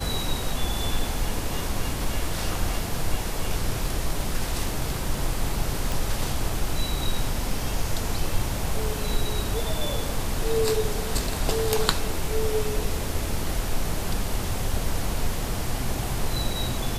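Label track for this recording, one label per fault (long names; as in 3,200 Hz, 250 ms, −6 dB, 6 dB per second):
5.920000	5.920000	click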